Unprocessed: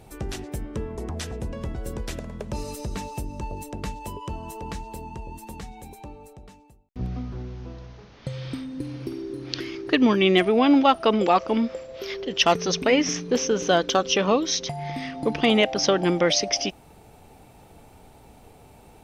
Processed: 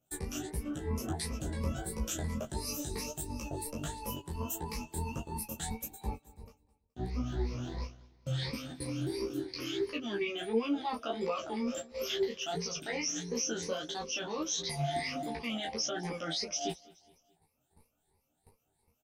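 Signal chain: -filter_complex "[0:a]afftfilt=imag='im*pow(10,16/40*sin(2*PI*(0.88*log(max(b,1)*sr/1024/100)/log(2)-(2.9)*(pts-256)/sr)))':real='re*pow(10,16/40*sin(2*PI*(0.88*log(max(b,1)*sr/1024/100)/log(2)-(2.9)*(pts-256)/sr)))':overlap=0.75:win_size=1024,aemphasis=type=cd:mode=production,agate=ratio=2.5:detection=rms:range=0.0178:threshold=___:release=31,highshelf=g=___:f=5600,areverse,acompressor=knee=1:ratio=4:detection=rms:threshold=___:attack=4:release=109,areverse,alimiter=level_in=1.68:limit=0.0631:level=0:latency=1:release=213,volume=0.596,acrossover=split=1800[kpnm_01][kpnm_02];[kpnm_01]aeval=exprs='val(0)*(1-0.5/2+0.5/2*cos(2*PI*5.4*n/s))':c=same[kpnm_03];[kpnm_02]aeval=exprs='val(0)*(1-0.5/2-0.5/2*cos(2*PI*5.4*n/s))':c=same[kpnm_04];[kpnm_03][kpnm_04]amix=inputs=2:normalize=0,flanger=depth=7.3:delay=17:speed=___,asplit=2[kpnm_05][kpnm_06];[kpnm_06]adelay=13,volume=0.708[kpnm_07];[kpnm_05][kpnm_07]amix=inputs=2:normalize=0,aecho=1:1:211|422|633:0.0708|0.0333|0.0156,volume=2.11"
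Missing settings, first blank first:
0.02, 3.5, 0.02, 1.5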